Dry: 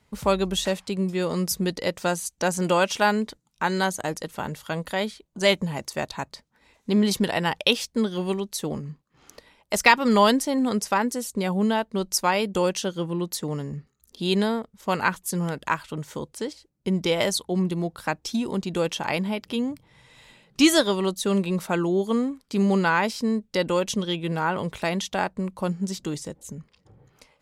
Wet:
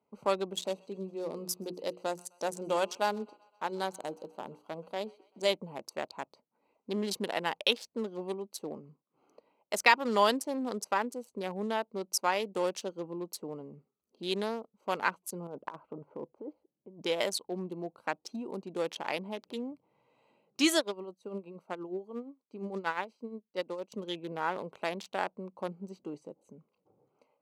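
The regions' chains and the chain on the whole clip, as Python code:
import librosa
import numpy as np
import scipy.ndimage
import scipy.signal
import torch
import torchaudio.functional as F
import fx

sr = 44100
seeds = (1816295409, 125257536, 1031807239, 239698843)

y = fx.chain(x, sr, fx.peak_eq(hz=1800.0, db=-8.5, octaves=1.0),
    fx.hum_notches(base_hz=60, count=8),
    fx.echo_wet_highpass(ms=129, feedback_pct=58, hz=1500.0, wet_db=-12), at=(0.53, 5.54))
y = fx.chain(y, sr, fx.lowpass(hz=1100.0, slope=12),
    fx.over_compress(threshold_db=-32.0, ratio=-1.0), at=(15.47, 17.02))
y = fx.chain(y, sr, fx.tremolo(hz=8.5, depth=0.51),
    fx.upward_expand(threshold_db=-33.0, expansion=1.5), at=(20.77, 23.92))
y = fx.wiener(y, sr, points=25)
y = scipy.signal.sosfilt(scipy.signal.butter(2, 330.0, 'highpass', fs=sr, output='sos'), y)
y = y * 10.0 ** (-6.0 / 20.0)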